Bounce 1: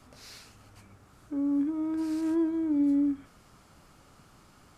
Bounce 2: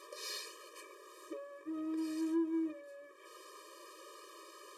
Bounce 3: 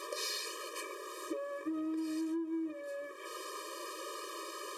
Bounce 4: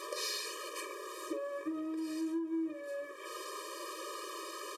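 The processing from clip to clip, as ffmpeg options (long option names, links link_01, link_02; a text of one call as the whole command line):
ffmpeg -i in.wav -af "acompressor=threshold=-36dB:ratio=10,aeval=exprs='0.0237*(cos(1*acos(clip(val(0)/0.0237,-1,1)))-cos(1*PI/2))+0.000422*(cos(8*acos(clip(val(0)/0.0237,-1,1)))-cos(8*PI/2))':channel_layout=same,afftfilt=real='re*eq(mod(floor(b*sr/1024/320),2),1)':imag='im*eq(mod(floor(b*sr/1024/320),2),1)':win_size=1024:overlap=0.75,volume=9dB" out.wav
ffmpeg -i in.wav -af "acompressor=threshold=-45dB:ratio=10,volume=10.5dB" out.wav
ffmpeg -i in.wav -filter_complex "[0:a]asplit=2[link_01][link_02];[link_02]adelay=46,volume=-11dB[link_03];[link_01][link_03]amix=inputs=2:normalize=0" out.wav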